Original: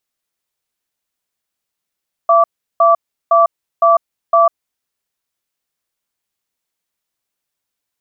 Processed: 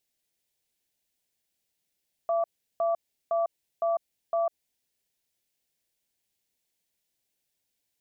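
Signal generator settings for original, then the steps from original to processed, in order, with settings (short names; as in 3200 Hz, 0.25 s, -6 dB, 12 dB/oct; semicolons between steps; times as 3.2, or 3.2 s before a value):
cadence 674 Hz, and 1160 Hz, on 0.15 s, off 0.36 s, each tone -9.5 dBFS 2.25 s
bell 1200 Hz -15 dB 0.64 oct; limiter -21 dBFS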